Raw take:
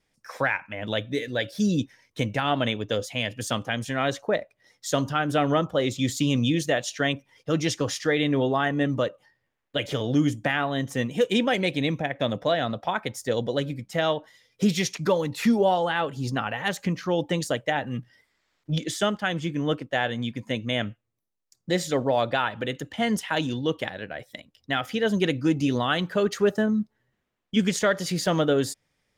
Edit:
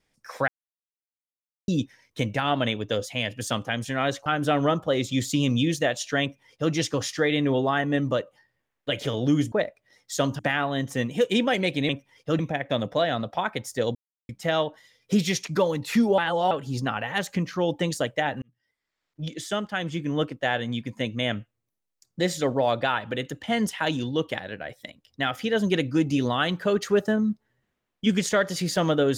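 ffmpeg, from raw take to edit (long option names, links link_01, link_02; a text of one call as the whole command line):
ffmpeg -i in.wav -filter_complex "[0:a]asplit=13[link_01][link_02][link_03][link_04][link_05][link_06][link_07][link_08][link_09][link_10][link_11][link_12][link_13];[link_01]atrim=end=0.48,asetpts=PTS-STARTPTS,afade=type=out:start_time=0.476:duration=0.004:curve=hsin[link_14];[link_02]atrim=start=0.48:end=1.68,asetpts=PTS-STARTPTS,volume=0[link_15];[link_03]atrim=start=1.68:end=4.262,asetpts=PTS-STARTPTS,afade=type=in:duration=0.004:curve=hsin[link_16];[link_04]atrim=start=5.128:end=10.392[link_17];[link_05]atrim=start=4.258:end=5.132[link_18];[link_06]atrim=start=10.388:end=11.892[link_19];[link_07]atrim=start=7.088:end=7.592[link_20];[link_08]atrim=start=11.888:end=13.45,asetpts=PTS-STARTPTS,afade=type=out:start_time=1.558:duration=0.004:curve=hsin[link_21];[link_09]atrim=start=13.45:end=13.79,asetpts=PTS-STARTPTS,volume=0[link_22];[link_10]atrim=start=13.79:end=15.682,asetpts=PTS-STARTPTS,afade=type=in:duration=0.004:curve=hsin[link_23];[link_11]atrim=start=15.678:end=16.012,asetpts=PTS-STARTPTS,areverse[link_24];[link_12]atrim=start=16.008:end=17.92,asetpts=PTS-STARTPTS,afade=type=out:start_time=1.908:duration=0.004:curve=hsin[link_25];[link_13]atrim=start=17.92,asetpts=PTS-STARTPTS,afade=type=in:duration=1.75[link_26];[link_14][link_15][link_16]concat=n=3:v=0:a=1[link_27];[link_27][link_17]acrossfade=duration=0.004:curve1=hsin:curve2=hsin[link_28];[link_28][link_18]acrossfade=duration=0.004:curve1=hsin:curve2=hsin[link_29];[link_29][link_19]acrossfade=duration=0.004:curve1=hsin:curve2=hsin[link_30];[link_30][link_20]acrossfade=duration=0.004:curve1=hsin:curve2=hsin[link_31];[link_21][link_22][link_23]concat=n=3:v=0:a=1[link_32];[link_31][link_32]acrossfade=duration=0.004:curve1=hsin:curve2=hsin[link_33];[link_33][link_24]acrossfade=duration=0.004:curve1=hsin:curve2=hsin[link_34];[link_25][link_26]concat=n=2:v=0:a=1[link_35];[link_34][link_35]acrossfade=duration=0.004:curve1=hsin:curve2=hsin" out.wav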